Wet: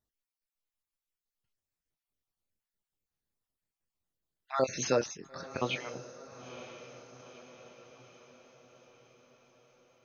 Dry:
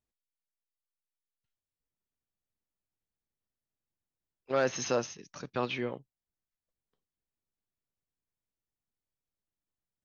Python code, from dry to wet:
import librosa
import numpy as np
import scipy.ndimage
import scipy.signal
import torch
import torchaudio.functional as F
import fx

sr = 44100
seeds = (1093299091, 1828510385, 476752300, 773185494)

y = fx.spec_dropout(x, sr, seeds[0], share_pct=39)
y = fx.doubler(y, sr, ms=23.0, db=-10.5)
y = fx.echo_diffused(y, sr, ms=943, feedback_pct=55, wet_db=-13.5)
y = y * librosa.db_to_amplitude(2.0)